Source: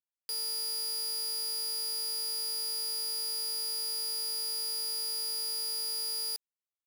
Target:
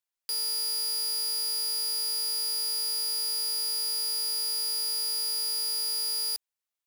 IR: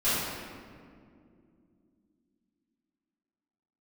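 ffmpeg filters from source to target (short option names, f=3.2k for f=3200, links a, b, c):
-af "equalizer=f=200:t=o:w=1.6:g=-14,volume=4.5dB"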